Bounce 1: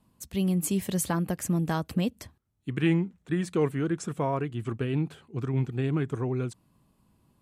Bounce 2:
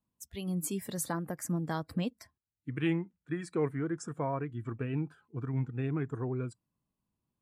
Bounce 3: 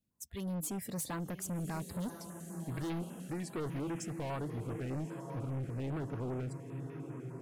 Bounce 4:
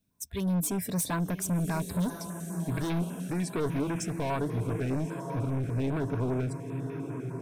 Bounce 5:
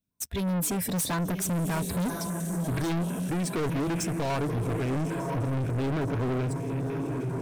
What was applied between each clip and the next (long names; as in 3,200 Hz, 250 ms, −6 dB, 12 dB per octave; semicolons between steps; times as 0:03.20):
noise reduction from a noise print of the clip's start 15 dB; level −5 dB
feedback delay with all-pass diffusion 1,074 ms, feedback 56%, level −12 dB; hard clipping −36 dBFS, distortion −6 dB; notch on a step sequencer 10 Hz 990–7,900 Hz; level +1 dB
EQ curve with evenly spaced ripples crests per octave 1.6, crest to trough 6 dB; level +7.5 dB
leveller curve on the samples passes 3; level −3 dB